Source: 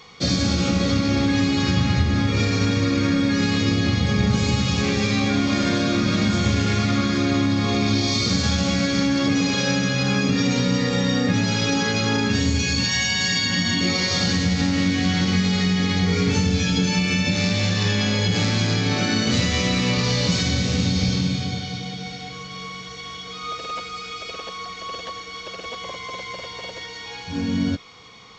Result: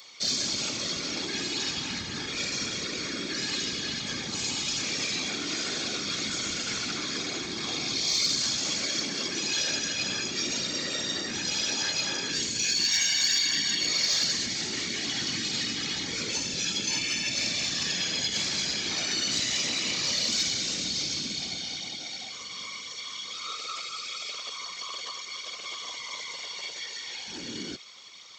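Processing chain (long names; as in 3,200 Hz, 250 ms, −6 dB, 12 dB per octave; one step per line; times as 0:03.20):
in parallel at −2 dB: brickwall limiter −18 dBFS, peak gain reduction 10.5 dB
on the sum: low-shelf EQ 410 Hz +10.5 dB
random phases in short frames
first difference
soft clipping −13 dBFS, distortion −30 dB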